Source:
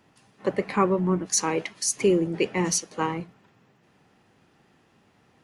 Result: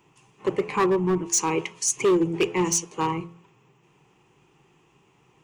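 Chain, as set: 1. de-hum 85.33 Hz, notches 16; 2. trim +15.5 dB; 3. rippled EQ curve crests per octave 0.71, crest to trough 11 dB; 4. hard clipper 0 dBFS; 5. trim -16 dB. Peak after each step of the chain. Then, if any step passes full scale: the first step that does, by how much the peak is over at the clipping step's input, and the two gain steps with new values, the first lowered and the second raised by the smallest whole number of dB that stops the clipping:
-7.5 dBFS, +8.0 dBFS, +9.5 dBFS, 0.0 dBFS, -16.0 dBFS; step 2, 9.5 dB; step 2 +5.5 dB, step 5 -6 dB

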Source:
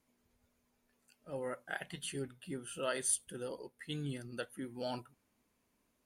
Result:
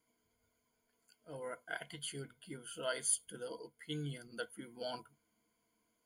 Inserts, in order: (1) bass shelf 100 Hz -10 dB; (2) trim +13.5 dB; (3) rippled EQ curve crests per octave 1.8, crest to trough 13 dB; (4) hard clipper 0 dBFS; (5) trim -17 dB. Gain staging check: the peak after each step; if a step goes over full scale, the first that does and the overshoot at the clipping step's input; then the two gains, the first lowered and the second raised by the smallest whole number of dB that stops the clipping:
-20.0 dBFS, -6.5 dBFS, -3.0 dBFS, -3.0 dBFS, -20.0 dBFS; nothing clips

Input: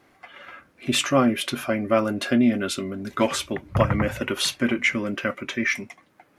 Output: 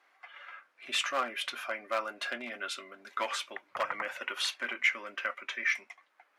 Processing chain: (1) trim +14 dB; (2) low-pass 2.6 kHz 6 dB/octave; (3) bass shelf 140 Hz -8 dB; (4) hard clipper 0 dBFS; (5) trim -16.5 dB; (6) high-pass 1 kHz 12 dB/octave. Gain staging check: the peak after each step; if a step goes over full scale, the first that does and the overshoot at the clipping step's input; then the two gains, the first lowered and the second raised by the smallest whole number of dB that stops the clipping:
+9.0 dBFS, +9.0 dBFS, +8.0 dBFS, 0.0 dBFS, -16.5 dBFS, -15.0 dBFS; step 1, 8.0 dB; step 1 +6 dB, step 5 -8.5 dB

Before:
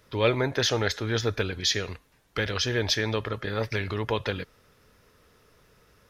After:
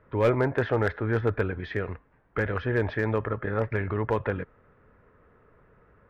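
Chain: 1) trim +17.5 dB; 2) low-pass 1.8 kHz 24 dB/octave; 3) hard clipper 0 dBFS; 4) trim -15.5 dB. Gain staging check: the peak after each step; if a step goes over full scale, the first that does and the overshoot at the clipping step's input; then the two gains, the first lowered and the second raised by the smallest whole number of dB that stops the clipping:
+8.0 dBFS, +6.5 dBFS, 0.0 dBFS, -15.5 dBFS; step 1, 6.5 dB; step 1 +10.5 dB, step 4 -8.5 dB

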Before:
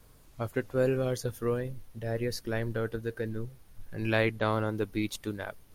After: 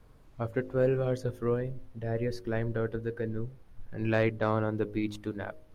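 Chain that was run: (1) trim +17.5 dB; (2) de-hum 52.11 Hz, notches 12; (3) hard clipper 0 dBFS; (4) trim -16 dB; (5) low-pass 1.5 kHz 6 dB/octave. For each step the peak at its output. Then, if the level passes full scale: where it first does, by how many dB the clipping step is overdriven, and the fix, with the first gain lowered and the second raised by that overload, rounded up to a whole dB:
+5.5 dBFS, +4.5 dBFS, 0.0 dBFS, -16.0 dBFS, -16.0 dBFS; step 1, 4.5 dB; step 1 +12.5 dB, step 4 -11 dB

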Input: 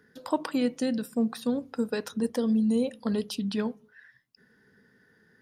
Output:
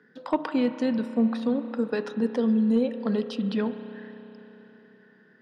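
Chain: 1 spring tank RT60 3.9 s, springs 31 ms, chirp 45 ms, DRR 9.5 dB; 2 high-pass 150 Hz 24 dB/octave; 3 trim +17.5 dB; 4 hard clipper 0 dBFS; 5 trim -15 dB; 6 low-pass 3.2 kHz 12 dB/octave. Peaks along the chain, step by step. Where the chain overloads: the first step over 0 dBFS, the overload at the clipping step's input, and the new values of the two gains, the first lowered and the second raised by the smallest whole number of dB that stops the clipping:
-13.5 dBFS, -13.5 dBFS, +4.0 dBFS, 0.0 dBFS, -15.0 dBFS, -14.5 dBFS; step 3, 4.0 dB; step 3 +13.5 dB, step 5 -11 dB

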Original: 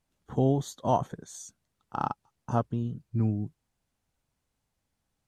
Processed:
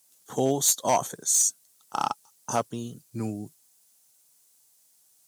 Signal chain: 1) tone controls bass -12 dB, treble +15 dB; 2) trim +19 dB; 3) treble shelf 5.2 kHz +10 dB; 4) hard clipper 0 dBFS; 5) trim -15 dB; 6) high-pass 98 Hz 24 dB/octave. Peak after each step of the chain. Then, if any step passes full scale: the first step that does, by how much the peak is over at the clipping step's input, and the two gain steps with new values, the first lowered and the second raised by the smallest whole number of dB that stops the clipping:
-13.0 dBFS, +6.0 dBFS, +7.5 dBFS, 0.0 dBFS, -15.0 dBFS, -11.0 dBFS; step 2, 7.5 dB; step 2 +11 dB, step 5 -7 dB

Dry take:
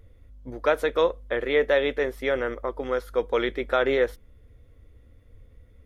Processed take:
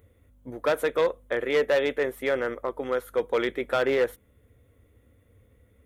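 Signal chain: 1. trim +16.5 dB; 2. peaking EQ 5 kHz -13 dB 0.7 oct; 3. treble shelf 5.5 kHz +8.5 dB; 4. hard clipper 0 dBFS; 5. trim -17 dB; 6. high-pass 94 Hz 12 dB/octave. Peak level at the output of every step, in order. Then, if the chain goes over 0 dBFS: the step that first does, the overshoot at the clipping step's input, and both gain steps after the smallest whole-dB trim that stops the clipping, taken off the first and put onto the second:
+7.5 dBFS, +7.0 dBFS, +7.5 dBFS, 0.0 dBFS, -17.0 dBFS, -14.0 dBFS; step 1, 7.5 dB; step 1 +8.5 dB, step 5 -9 dB

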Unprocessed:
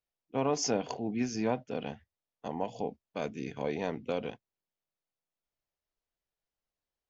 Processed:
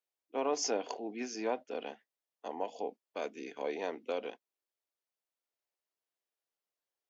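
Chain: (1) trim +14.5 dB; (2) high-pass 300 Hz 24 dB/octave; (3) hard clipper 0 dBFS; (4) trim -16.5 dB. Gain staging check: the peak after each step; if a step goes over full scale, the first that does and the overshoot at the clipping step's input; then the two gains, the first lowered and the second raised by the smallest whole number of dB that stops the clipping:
-2.0 dBFS, -3.5 dBFS, -3.5 dBFS, -20.0 dBFS; nothing clips

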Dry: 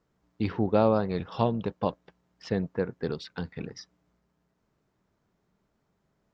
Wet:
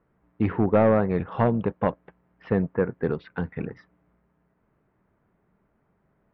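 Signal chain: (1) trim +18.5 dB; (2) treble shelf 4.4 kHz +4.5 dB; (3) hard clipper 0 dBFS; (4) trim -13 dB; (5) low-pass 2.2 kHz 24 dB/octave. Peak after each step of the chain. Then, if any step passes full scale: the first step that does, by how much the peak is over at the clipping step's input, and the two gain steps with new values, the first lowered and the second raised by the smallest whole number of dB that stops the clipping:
+9.0 dBFS, +9.0 dBFS, 0.0 dBFS, -13.0 dBFS, -11.5 dBFS; step 1, 9.0 dB; step 1 +9.5 dB, step 4 -4 dB

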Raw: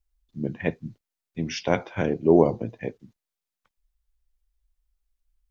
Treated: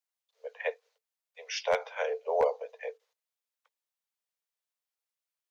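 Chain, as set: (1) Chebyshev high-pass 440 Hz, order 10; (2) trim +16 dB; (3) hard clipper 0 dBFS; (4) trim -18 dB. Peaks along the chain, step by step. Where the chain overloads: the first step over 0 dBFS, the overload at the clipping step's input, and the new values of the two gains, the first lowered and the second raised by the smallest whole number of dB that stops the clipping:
-11.0 dBFS, +5.0 dBFS, 0.0 dBFS, -18.0 dBFS; step 2, 5.0 dB; step 2 +11 dB, step 4 -13 dB

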